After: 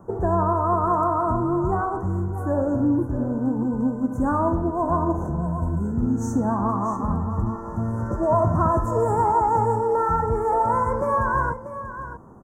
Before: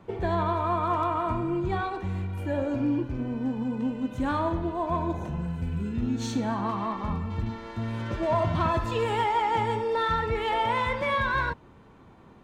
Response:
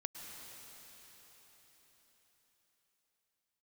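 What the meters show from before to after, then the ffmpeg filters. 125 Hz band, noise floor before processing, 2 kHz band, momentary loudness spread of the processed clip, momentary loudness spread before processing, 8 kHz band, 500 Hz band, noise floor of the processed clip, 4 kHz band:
+6.0 dB, −52 dBFS, −3.5 dB, 7 LU, 7 LU, +3.0 dB, +6.0 dB, −35 dBFS, below −25 dB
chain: -filter_complex "[0:a]asuperstop=centerf=3100:order=8:qfactor=0.6,asplit=2[link_01][link_02];[link_02]aecho=0:1:637:0.266[link_03];[link_01][link_03]amix=inputs=2:normalize=0,volume=5.5dB"

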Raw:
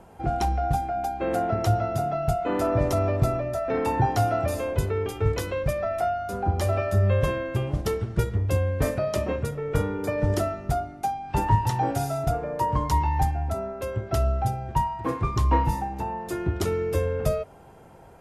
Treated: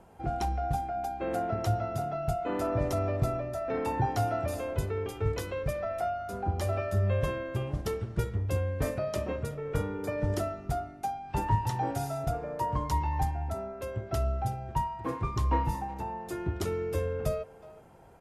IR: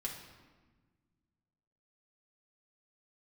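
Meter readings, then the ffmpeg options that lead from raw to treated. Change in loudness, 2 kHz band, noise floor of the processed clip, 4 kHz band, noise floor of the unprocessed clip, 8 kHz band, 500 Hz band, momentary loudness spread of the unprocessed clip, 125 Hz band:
−6.0 dB, −6.0 dB, −49 dBFS, −6.0 dB, −48 dBFS, −6.0 dB, −6.0 dB, 6 LU, −6.0 dB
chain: -filter_complex "[0:a]asplit=2[link_01][link_02];[link_02]adelay=370,highpass=300,lowpass=3400,asoftclip=type=hard:threshold=-17.5dB,volume=-18dB[link_03];[link_01][link_03]amix=inputs=2:normalize=0,volume=-6dB"

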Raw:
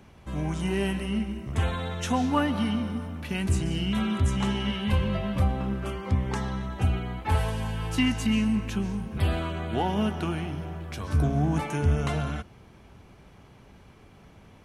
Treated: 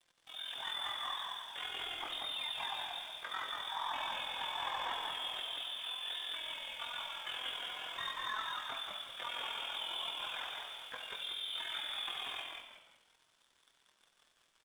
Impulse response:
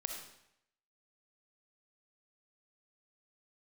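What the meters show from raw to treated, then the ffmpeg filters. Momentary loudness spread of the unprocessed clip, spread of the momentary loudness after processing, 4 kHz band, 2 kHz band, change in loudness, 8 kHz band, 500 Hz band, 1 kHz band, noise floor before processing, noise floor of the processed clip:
7 LU, 5 LU, +2.0 dB, −6.0 dB, −11.0 dB, −13.0 dB, −20.0 dB, −8.0 dB, −53 dBFS, −74 dBFS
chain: -filter_complex "[0:a]highpass=frequency=320:width=0.5412,highpass=frequency=320:width=1.3066,equalizer=frequency=1100:width=0.68:gain=-6.5,aecho=1:1:7.4:0.81,alimiter=level_in=3dB:limit=-24dB:level=0:latency=1:release=129,volume=-3dB,lowpass=frequency=3300:width_type=q:width=0.5098,lowpass=frequency=3300:width_type=q:width=0.6013,lowpass=frequency=3300:width_type=q:width=0.9,lowpass=frequency=3300:width_type=q:width=2.563,afreqshift=-3900,asplit=2[link_01][link_02];[link_02]highpass=frequency=720:poles=1,volume=10dB,asoftclip=type=tanh:threshold=-25dB[link_03];[link_01][link_03]amix=inputs=2:normalize=0,lowpass=frequency=1100:poles=1,volume=-6dB,aeval=exprs='sgn(val(0))*max(abs(val(0))-0.00119,0)':channel_layout=same,aeval=exprs='val(0)*sin(2*PI*21*n/s)':channel_layout=same,flanger=delay=5.7:depth=2.7:regen=67:speed=0.49:shape=sinusoidal,asplit=5[link_04][link_05][link_06][link_07][link_08];[link_05]adelay=184,afreqshift=-72,volume=-3.5dB[link_09];[link_06]adelay=368,afreqshift=-144,volume=-13.1dB[link_10];[link_07]adelay=552,afreqshift=-216,volume=-22.8dB[link_11];[link_08]adelay=736,afreqshift=-288,volume=-32.4dB[link_12];[link_04][link_09][link_10][link_11][link_12]amix=inputs=5:normalize=0,asplit=2[link_13][link_14];[1:a]atrim=start_sample=2205[link_15];[link_14][link_15]afir=irnorm=-1:irlink=0,volume=2dB[link_16];[link_13][link_16]amix=inputs=2:normalize=0,volume=1dB"

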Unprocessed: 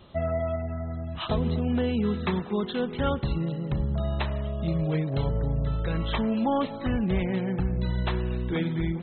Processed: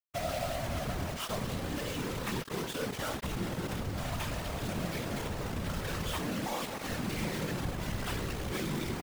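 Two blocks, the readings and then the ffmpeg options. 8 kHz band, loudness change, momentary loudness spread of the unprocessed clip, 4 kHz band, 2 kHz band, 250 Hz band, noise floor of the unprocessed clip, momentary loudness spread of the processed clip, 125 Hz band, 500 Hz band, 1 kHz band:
can't be measured, −7.5 dB, 4 LU, −0.5 dB, −0.5 dB, −9.5 dB, −37 dBFS, 2 LU, −9.0 dB, −7.5 dB, −4.0 dB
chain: -filter_complex "[0:a]bandreject=frequency=50:width_type=h:width=6,bandreject=frequency=100:width_type=h:width=6,bandreject=frequency=150:width_type=h:width=6,bandreject=frequency=200:width_type=h:width=6,bandreject=frequency=250:width_type=h:width=6,bandreject=frequency=300:width_type=h:width=6,bandreject=frequency=350:width_type=h:width=6,bandreject=frequency=400:width_type=h:width=6,bandreject=frequency=450:width_type=h:width=6,acrossover=split=780[link_01][link_02];[link_01]alimiter=level_in=3.5dB:limit=-24dB:level=0:latency=1:release=18,volume=-3.5dB[link_03];[link_03][link_02]amix=inputs=2:normalize=0,acontrast=41,aresample=8000,asoftclip=type=tanh:threshold=-27dB,aresample=44100,acrusher=bits=4:mix=0:aa=0.000001,afftfilt=real='hypot(re,im)*cos(2*PI*random(0))':imag='hypot(re,im)*sin(2*PI*random(1))':win_size=512:overlap=0.75,volume=-1.5dB"

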